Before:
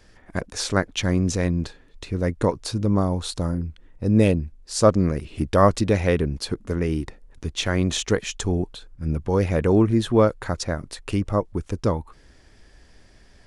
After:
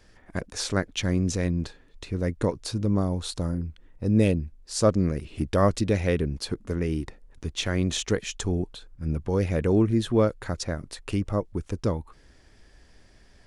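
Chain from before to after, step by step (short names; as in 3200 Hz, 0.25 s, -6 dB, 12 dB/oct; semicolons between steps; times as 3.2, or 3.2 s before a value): dynamic EQ 970 Hz, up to -5 dB, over -35 dBFS, Q 1.1; gain -3 dB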